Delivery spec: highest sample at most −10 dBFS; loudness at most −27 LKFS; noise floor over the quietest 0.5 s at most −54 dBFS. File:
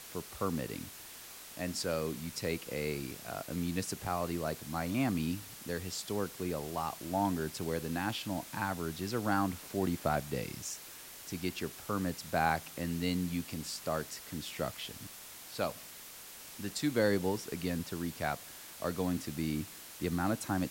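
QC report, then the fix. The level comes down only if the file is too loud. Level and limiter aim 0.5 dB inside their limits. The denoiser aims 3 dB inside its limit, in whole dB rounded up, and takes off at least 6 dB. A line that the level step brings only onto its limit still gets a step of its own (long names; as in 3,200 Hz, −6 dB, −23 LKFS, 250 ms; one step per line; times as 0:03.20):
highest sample −15.0 dBFS: in spec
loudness −36.0 LKFS: in spec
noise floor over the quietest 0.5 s −50 dBFS: out of spec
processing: broadband denoise 7 dB, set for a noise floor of −50 dBFS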